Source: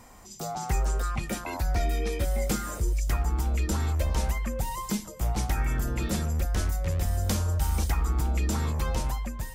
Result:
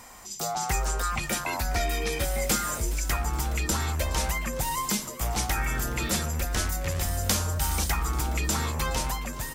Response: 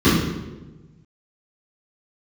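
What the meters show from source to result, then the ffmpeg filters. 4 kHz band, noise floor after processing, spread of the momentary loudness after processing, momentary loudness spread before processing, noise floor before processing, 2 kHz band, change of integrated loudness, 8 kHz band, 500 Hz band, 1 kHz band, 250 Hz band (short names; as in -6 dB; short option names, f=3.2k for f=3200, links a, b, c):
+7.5 dB, -38 dBFS, 3 LU, 5 LU, -43 dBFS, +7.0 dB, +1.0 dB, +8.0 dB, +1.5 dB, +4.5 dB, -1.0 dB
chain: -filter_complex "[0:a]acontrast=82,tiltshelf=f=640:g=-5.5,asplit=6[a][b][c][d][e][f];[b]adelay=419,afreqshift=94,volume=-18dB[g];[c]adelay=838,afreqshift=188,volume=-22.4dB[h];[d]adelay=1257,afreqshift=282,volume=-26.9dB[i];[e]adelay=1676,afreqshift=376,volume=-31.3dB[j];[f]adelay=2095,afreqshift=470,volume=-35.7dB[k];[a][g][h][i][j][k]amix=inputs=6:normalize=0,volume=-4.5dB"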